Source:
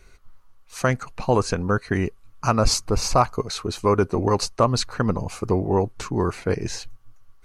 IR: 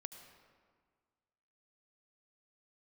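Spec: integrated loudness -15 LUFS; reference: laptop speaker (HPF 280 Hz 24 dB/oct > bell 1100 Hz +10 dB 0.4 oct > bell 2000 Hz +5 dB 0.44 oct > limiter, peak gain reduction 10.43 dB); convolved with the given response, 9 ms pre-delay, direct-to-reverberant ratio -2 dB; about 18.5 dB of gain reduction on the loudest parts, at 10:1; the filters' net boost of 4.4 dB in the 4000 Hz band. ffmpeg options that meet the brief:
-filter_complex "[0:a]equalizer=f=4k:t=o:g=5,acompressor=threshold=-31dB:ratio=10,asplit=2[a][b];[1:a]atrim=start_sample=2205,adelay=9[c];[b][c]afir=irnorm=-1:irlink=0,volume=6.5dB[d];[a][d]amix=inputs=2:normalize=0,highpass=f=280:w=0.5412,highpass=f=280:w=1.3066,equalizer=f=1.1k:t=o:w=0.4:g=10,equalizer=f=2k:t=o:w=0.44:g=5,volume=19dB,alimiter=limit=-3.5dB:level=0:latency=1"

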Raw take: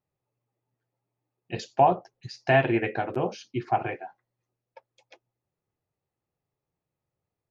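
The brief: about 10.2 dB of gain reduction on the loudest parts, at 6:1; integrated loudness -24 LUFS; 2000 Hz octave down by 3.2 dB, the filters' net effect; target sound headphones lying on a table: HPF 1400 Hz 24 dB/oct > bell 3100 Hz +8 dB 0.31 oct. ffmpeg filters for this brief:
-af "equalizer=f=2k:t=o:g=-4,acompressor=threshold=-26dB:ratio=6,highpass=f=1.4k:w=0.5412,highpass=f=1.4k:w=1.3066,equalizer=f=3.1k:t=o:w=0.31:g=8,volume=18.5dB"

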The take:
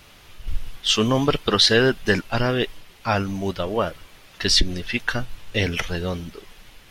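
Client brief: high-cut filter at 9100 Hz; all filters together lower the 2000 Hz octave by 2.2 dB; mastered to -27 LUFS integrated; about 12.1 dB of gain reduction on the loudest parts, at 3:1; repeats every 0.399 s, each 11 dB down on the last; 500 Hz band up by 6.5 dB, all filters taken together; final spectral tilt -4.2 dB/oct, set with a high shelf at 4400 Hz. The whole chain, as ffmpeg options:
-af "lowpass=9.1k,equalizer=f=500:t=o:g=8,equalizer=f=2k:t=o:g=-4.5,highshelf=f=4.4k:g=4.5,acompressor=threshold=-26dB:ratio=3,aecho=1:1:399|798|1197:0.282|0.0789|0.0221,volume=1.5dB"

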